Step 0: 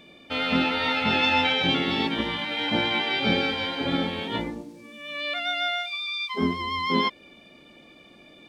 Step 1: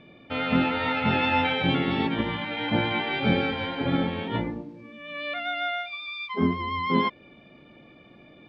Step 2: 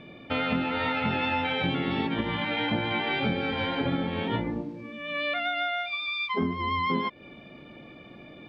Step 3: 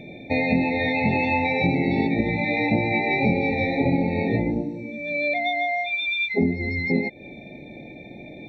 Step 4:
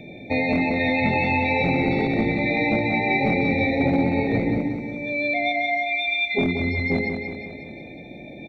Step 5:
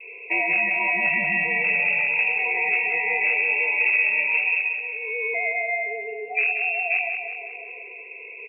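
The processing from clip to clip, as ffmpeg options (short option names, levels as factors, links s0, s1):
-af "lowpass=2400,equalizer=f=120:t=o:w=0.89:g=8.5"
-af "acompressor=threshold=0.0355:ratio=6,volume=1.68"
-af "afftfilt=real='re*eq(mod(floor(b*sr/1024/890),2),0)':imag='im*eq(mod(floor(b*sr/1024/890),2),0)':win_size=1024:overlap=0.75,volume=2.24"
-filter_complex "[0:a]acrossover=split=340|2300[s0][s1][s2];[s0]aeval=exprs='0.106*(abs(mod(val(0)/0.106+3,4)-2)-1)':c=same[s3];[s3][s1][s2]amix=inputs=3:normalize=0,aecho=1:1:182|364|546|728|910|1092|1274:0.501|0.276|0.152|0.0834|0.0459|0.0252|0.0139"
-af "lowpass=f=2400:t=q:w=0.5098,lowpass=f=2400:t=q:w=0.6013,lowpass=f=2400:t=q:w=0.9,lowpass=f=2400:t=q:w=2.563,afreqshift=-2800,adynamicequalizer=threshold=0.01:dfrequency=450:dqfactor=0.79:tfrequency=450:tqfactor=0.79:attack=5:release=100:ratio=0.375:range=3.5:mode=cutabove:tftype=bell"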